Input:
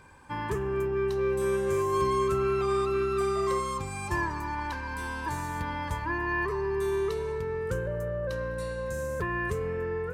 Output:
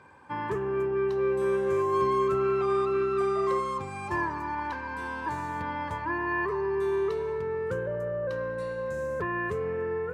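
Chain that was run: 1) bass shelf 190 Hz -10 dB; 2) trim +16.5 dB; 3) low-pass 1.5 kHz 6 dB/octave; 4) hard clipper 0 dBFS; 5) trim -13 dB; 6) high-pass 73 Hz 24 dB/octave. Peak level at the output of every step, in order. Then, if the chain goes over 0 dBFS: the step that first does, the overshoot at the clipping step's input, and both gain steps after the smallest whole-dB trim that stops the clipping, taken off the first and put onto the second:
-18.0 dBFS, -1.5 dBFS, -3.0 dBFS, -3.0 dBFS, -16.0 dBFS, -15.5 dBFS; nothing clips

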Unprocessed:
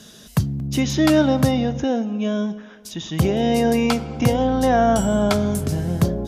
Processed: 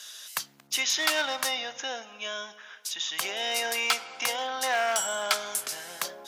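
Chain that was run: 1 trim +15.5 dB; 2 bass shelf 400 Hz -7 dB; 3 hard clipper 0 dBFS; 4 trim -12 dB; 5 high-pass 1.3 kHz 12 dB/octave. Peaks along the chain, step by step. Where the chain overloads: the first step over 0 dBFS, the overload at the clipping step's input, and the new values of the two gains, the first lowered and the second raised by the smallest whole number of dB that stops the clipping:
+11.0 dBFS, +9.0 dBFS, 0.0 dBFS, -12.0 dBFS, -8.5 dBFS; step 1, 9.0 dB; step 1 +6.5 dB, step 4 -3 dB

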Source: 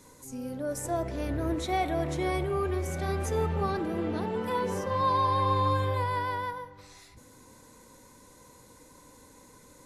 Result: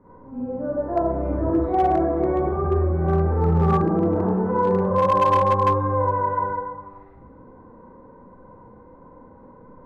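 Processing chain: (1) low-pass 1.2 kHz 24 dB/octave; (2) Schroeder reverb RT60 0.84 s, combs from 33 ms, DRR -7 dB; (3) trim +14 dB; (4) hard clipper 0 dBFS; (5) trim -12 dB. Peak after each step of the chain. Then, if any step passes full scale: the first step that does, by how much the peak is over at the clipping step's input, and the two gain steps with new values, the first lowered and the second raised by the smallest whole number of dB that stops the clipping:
-16.0 dBFS, -8.0 dBFS, +6.0 dBFS, 0.0 dBFS, -12.0 dBFS; step 3, 6.0 dB; step 3 +8 dB, step 5 -6 dB

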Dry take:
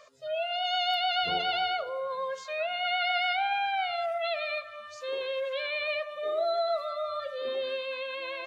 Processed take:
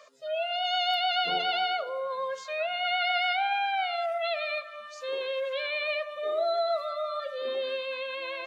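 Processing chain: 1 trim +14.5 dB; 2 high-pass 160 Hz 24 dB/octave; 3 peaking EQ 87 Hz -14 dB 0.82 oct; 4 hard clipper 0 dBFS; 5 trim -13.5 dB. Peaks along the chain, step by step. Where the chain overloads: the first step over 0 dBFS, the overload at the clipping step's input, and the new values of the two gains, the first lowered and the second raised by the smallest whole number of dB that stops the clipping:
-2.5 dBFS, -2.5 dBFS, -2.5 dBFS, -2.5 dBFS, -16.0 dBFS; nothing clips

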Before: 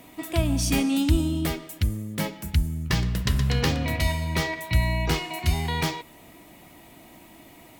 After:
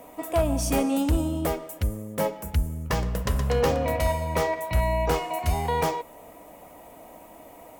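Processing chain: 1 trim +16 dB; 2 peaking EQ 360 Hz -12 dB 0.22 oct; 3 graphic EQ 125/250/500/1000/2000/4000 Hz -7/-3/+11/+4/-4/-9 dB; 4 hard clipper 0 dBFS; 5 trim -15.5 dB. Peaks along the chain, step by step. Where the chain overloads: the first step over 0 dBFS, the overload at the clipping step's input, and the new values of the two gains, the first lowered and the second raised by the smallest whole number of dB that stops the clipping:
+7.0 dBFS, +6.5 dBFS, +6.5 dBFS, 0.0 dBFS, -15.5 dBFS; step 1, 6.5 dB; step 1 +9 dB, step 5 -8.5 dB

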